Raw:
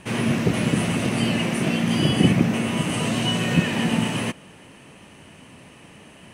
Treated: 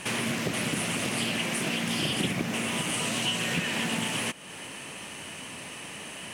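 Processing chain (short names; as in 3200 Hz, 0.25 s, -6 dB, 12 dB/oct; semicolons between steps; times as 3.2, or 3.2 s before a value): tilt +2.5 dB/oct; compressor 2.5:1, threshold -38 dBFS, peak gain reduction 15 dB; Doppler distortion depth 0.31 ms; gain +6 dB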